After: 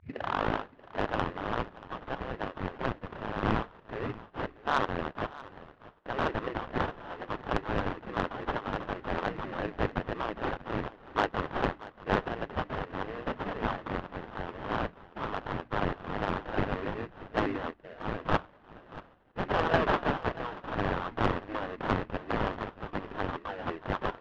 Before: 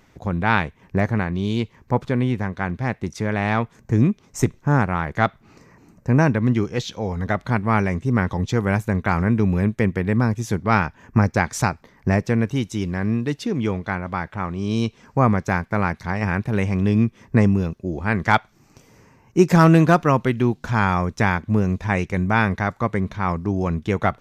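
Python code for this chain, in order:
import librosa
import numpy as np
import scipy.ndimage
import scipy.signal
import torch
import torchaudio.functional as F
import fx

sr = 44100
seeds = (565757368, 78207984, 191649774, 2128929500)

p1 = fx.tape_start_head(x, sr, length_s=0.88)
p2 = fx.hum_notches(p1, sr, base_hz=60, count=5)
p3 = fx.spec_gate(p2, sr, threshold_db=-15, keep='weak')
p4 = fx.high_shelf(p3, sr, hz=2100.0, db=10.5)
p5 = fx.rider(p4, sr, range_db=3, speed_s=2.0)
p6 = p4 + (p5 * 10.0 ** (0.0 / 20.0))
p7 = fx.sample_hold(p6, sr, seeds[0], rate_hz=2300.0, jitter_pct=20)
p8 = fx.ladder_lowpass(p7, sr, hz=3100.0, resonance_pct=20)
p9 = 10.0 ** (-11.0 / 20.0) * np.tanh(p8 / 10.0 ** (-11.0 / 20.0))
p10 = fx.tremolo_random(p9, sr, seeds[1], hz=3.5, depth_pct=55)
y = p10 + fx.echo_single(p10, sr, ms=633, db=-18.0, dry=0)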